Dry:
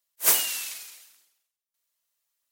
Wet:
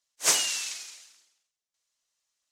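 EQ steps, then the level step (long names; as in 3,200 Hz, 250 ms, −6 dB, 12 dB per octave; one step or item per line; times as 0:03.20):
low-pass with resonance 6,500 Hz, resonance Q 1.7
0.0 dB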